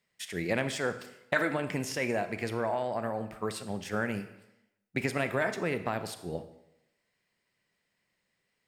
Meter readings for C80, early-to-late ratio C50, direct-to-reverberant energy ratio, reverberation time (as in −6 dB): 14.0 dB, 11.5 dB, 10.0 dB, 0.90 s